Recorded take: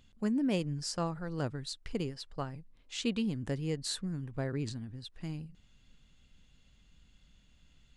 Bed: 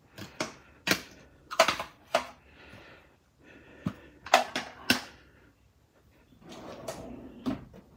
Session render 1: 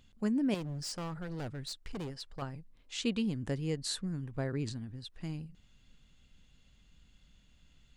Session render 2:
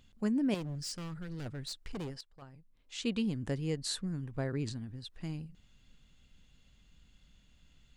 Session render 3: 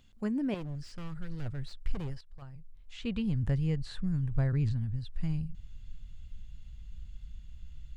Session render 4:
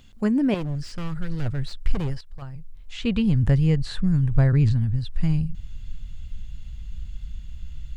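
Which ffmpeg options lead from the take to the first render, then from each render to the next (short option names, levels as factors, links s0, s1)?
-filter_complex "[0:a]asettb=1/sr,asplit=3[s0][s1][s2];[s0]atrim=end=0.544[s3];[s1]atrim=start=0.54:end=2.42,asetpts=PTS-STARTPTS,afade=t=in:d=0.004:c=qsin,afade=t=out:st=1.876:d=0.004:c=qsin,asoftclip=type=hard:threshold=0.0158[s4];[s2]atrim=start=2.416[s5];[s3][s4]acrossfade=d=0.004:c1=hsin:c2=qsin[s6];[s6][s5]acrossfade=d=0.004:c1=qsin:c2=hsin"
-filter_complex "[0:a]asettb=1/sr,asplit=3[s0][s1][s2];[s0]atrim=end=0.754[s3];[s1]atrim=start=0.75:end=1.46,asetpts=PTS-STARTPTS,afade=t=in:d=0.004:c=qsin,afade=t=out:st=0.706:d=0.004:c=qsin,equalizer=f=750:t=o:w=1.4:g=-11.5[s4];[s2]atrim=start=1.456[s5];[s3][s4]acrossfade=d=0.004:c1=hsin:c2=qsin[s6];[s6][s5]acrossfade=d=0.004:c1=qsin:c2=hsin,asplit=2[s7][s8];[s7]atrim=end=2.21,asetpts=PTS-STARTPTS,afade=t=out:st=2.206:d=0.004:c=hsin:silence=0.188365[s9];[s8]atrim=start=2.21,asetpts=PTS-STARTPTS,afade=t=in:d=0.96:c=qua:silence=0.188365[s10];[s9][s10]concat=n=2:v=0:a=1"
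-filter_complex "[0:a]acrossover=split=3200[s0][s1];[s1]acompressor=threshold=0.00112:ratio=4:attack=1:release=60[s2];[s0][s2]amix=inputs=2:normalize=0,asubboost=boost=11.5:cutoff=100"
-af "volume=3.35"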